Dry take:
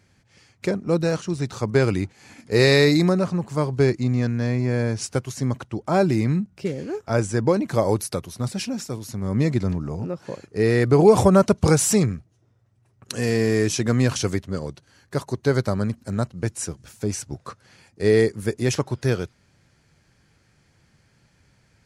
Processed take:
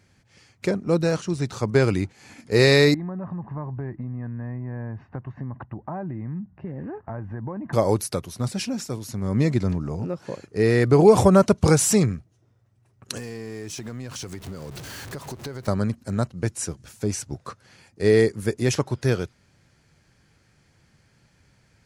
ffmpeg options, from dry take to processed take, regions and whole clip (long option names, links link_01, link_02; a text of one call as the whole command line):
ffmpeg -i in.wav -filter_complex "[0:a]asettb=1/sr,asplit=3[link_01][link_02][link_03];[link_01]atrim=end=2.944[link_04];[link_02]atrim=start=2.94:end=7.73,asetpts=PTS-STARTPTS,afade=type=in:duration=0.004:curve=qsin,afade=type=out:start_time=4.786:duration=0.004:curve=qsin,aecho=1:1:1.1:0.53,atrim=end_sample=211239,acompressor=threshold=-29dB:ratio=6:attack=3.2:release=140:knee=1:detection=peak,lowpass=frequency=1700:width=0.5412,lowpass=frequency=1700:width=1.3066[link_05];[link_03]atrim=start=7.726[link_06];[link_04][link_05]acrossfade=duration=0.004:curve1=hsin:curve2=qsin[link_07];[link_07][link_06]acrossfade=duration=0.004:curve1=qsin:curve2=hsin,asettb=1/sr,asplit=3[link_08][link_09][link_10];[link_08]atrim=end=13.174[link_11];[link_09]atrim=start=13.17:end=15.68,asetpts=PTS-STARTPTS,afade=type=in:duration=0.004:curve=qsin,afade=type=out:start_time=2.506:duration=0.004:curve=qsin,aeval=exprs='val(0)+0.5*0.0237*sgn(val(0))':channel_layout=same,acompressor=threshold=-31dB:ratio=8:attack=3.2:release=140:knee=1:detection=peak[link_12];[link_10]atrim=start=15.676[link_13];[link_11][link_12]acrossfade=duration=0.004:curve1=hsin:curve2=qsin[link_14];[link_14][link_13]acrossfade=duration=0.004:curve1=qsin:curve2=hsin" out.wav